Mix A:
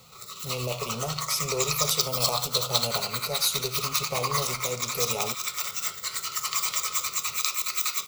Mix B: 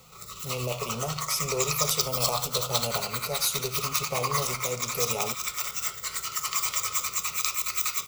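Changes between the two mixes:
background: remove HPF 180 Hz 12 dB/oct; master: add bell 4100 Hz -5.5 dB 0.36 oct

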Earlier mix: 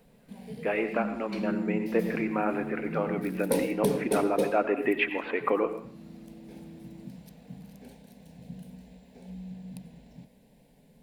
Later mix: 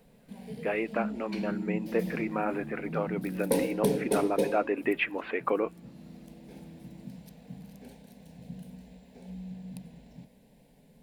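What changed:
speech: send off; second sound -6.0 dB

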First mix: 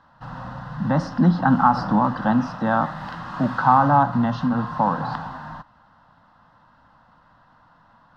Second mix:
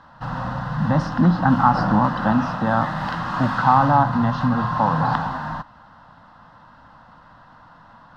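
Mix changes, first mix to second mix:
speech: remove HPF 130 Hz 24 dB/oct; background +7.5 dB

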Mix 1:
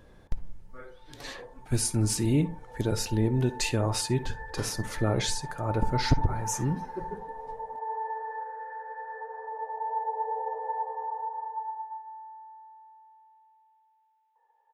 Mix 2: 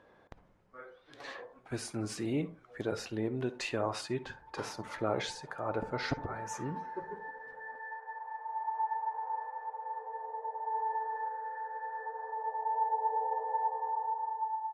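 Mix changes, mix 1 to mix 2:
background: entry +2.85 s; master: add band-pass 1000 Hz, Q 0.64

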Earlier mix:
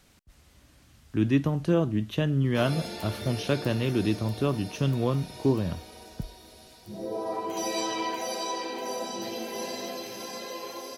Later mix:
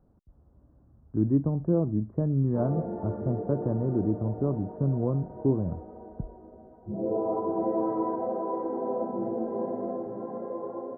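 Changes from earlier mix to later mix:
background +7.0 dB; master: add Gaussian blur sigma 10 samples

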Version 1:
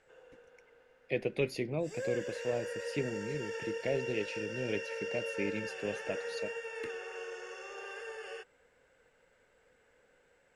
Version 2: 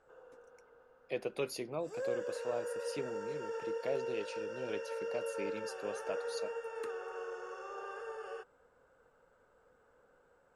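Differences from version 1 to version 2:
speech: add tilt +4 dB/oct; master: add resonant high shelf 1600 Hz -7.5 dB, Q 3

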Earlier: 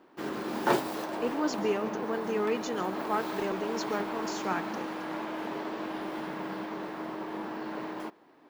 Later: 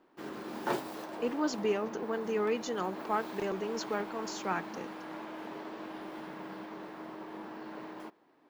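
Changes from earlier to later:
background -7.0 dB; reverb: off

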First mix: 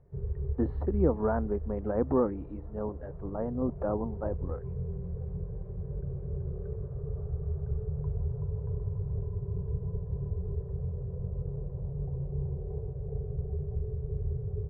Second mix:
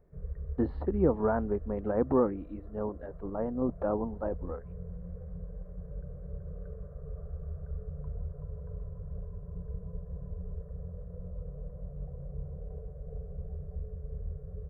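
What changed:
background: add fixed phaser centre 580 Hz, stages 8; master: remove air absorption 260 m

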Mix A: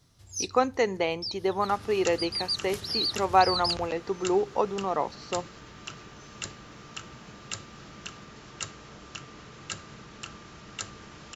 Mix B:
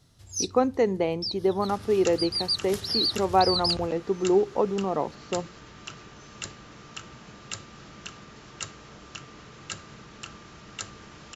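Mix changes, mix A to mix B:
speech: add tilt shelf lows +8 dB, about 680 Hz; first sound +3.0 dB

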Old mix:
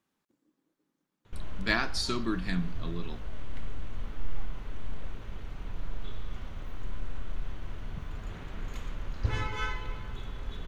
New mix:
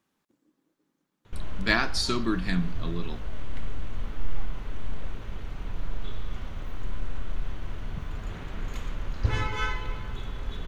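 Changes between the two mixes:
speech +4.0 dB; background +4.0 dB

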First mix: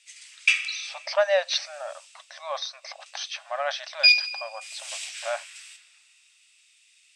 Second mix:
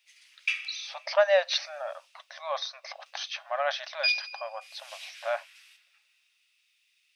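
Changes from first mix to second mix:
background -7.5 dB; master: remove synth low-pass 8000 Hz, resonance Q 5.7

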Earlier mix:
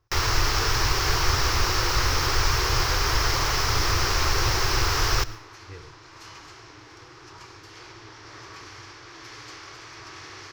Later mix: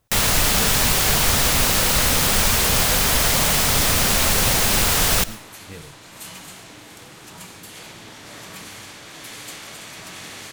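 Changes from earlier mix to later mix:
second sound: remove LPF 9800 Hz 12 dB/oct; master: remove EQ curve 120 Hz 0 dB, 200 Hz -25 dB, 350 Hz +2 dB, 600 Hz -11 dB, 1100 Hz +1 dB, 2100 Hz -5 dB, 3600 Hz -10 dB, 5400 Hz 0 dB, 8800 Hz -25 dB, 15000 Hz -16 dB

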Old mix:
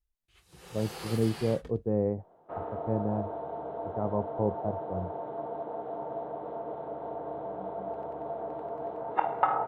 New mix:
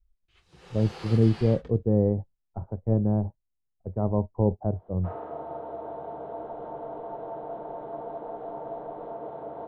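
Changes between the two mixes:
speech: add tilt -3 dB/oct; first sound: add LPF 5100 Hz 12 dB/oct; second sound: entry +2.55 s

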